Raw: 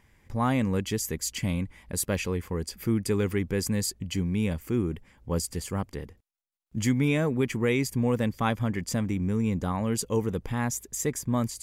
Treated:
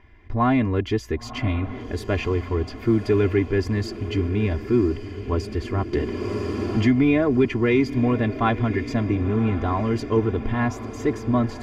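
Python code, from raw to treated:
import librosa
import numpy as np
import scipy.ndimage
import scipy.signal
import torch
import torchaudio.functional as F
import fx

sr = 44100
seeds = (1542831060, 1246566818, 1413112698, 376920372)

p1 = 10.0 ** (-29.5 / 20.0) * np.tanh(x / 10.0 ** (-29.5 / 20.0))
p2 = x + F.gain(torch.from_numpy(p1), -8.0).numpy()
p3 = fx.air_absorb(p2, sr, metres=280.0)
p4 = p3 + 0.88 * np.pad(p3, (int(2.9 * sr / 1000.0), 0))[:len(p3)]
p5 = fx.echo_diffused(p4, sr, ms=1047, feedback_pct=63, wet_db=-13)
p6 = fx.band_squash(p5, sr, depth_pct=70, at=(5.93, 7.45))
y = F.gain(torch.from_numpy(p6), 4.0).numpy()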